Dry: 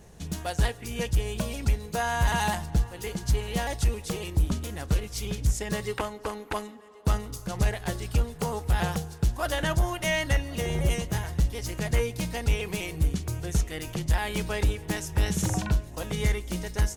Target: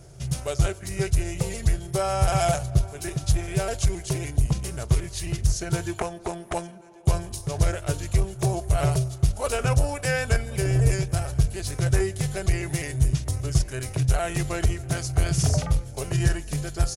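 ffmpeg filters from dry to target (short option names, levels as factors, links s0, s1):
-af "equalizer=f=100:t=o:w=0.33:g=9,equalizer=f=160:t=o:w=0.33:g=11,equalizer=f=315:t=o:w=0.33:g=-6,equalizer=f=500:t=o:w=0.33:g=5,equalizer=f=800:t=o:w=0.33:g=7,equalizer=f=8000:t=o:w=0.33:g=6,equalizer=f=12500:t=o:w=0.33:g=12,asetrate=36028,aresample=44100,atempo=1.22405"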